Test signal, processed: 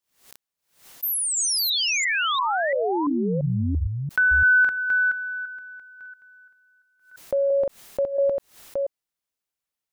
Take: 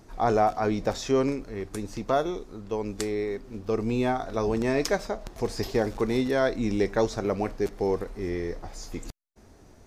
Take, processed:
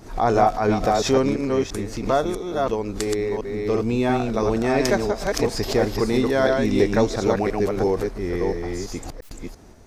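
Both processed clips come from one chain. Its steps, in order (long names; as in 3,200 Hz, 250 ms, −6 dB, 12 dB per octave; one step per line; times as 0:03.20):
delay that plays each chunk backwards 341 ms, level −3 dB
background raised ahead of every attack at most 130 dB per second
level +4 dB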